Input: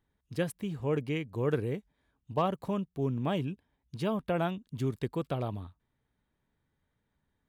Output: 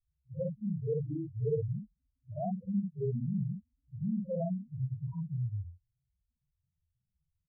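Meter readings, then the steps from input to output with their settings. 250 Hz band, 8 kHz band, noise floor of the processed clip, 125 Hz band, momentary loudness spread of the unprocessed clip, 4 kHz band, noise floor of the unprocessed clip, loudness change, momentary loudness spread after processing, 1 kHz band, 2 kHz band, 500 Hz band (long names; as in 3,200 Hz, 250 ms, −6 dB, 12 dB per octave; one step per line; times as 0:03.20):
−2.0 dB, can't be measured, −85 dBFS, +0.5 dB, 9 LU, below −35 dB, −80 dBFS, −2.5 dB, 10 LU, −11.5 dB, below −40 dB, −4.5 dB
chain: head-to-tape spacing loss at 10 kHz 27 dB
spectral peaks only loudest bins 1
double-tracking delay 49 ms −3 dB
on a send: backwards echo 47 ms −23.5 dB
on the sum: treble cut that deepens with the level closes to 2,000 Hz, closed at −36.5 dBFS
level +5 dB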